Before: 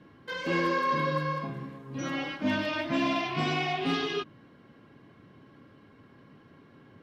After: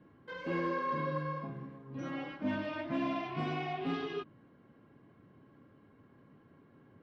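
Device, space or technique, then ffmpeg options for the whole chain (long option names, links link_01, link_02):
through cloth: -af "highshelf=frequency=3200:gain=-16.5,volume=-5.5dB"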